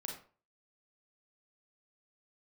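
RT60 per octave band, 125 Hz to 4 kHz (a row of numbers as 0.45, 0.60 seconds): 0.45, 0.40, 0.40, 0.40, 0.35, 0.25 seconds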